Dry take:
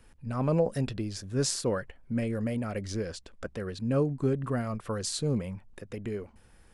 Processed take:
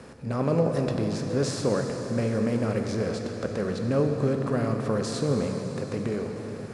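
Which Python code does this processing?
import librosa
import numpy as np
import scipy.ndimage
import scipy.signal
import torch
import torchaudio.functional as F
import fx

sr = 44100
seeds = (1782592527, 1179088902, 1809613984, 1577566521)

y = fx.bin_compress(x, sr, power=0.6)
y = scipy.signal.sosfilt(scipy.signal.butter(2, 71.0, 'highpass', fs=sr, output='sos'), y)
y = fx.high_shelf(y, sr, hz=5000.0, db=-11.5)
y = fx.rev_plate(y, sr, seeds[0], rt60_s=4.8, hf_ratio=0.95, predelay_ms=0, drr_db=3.0)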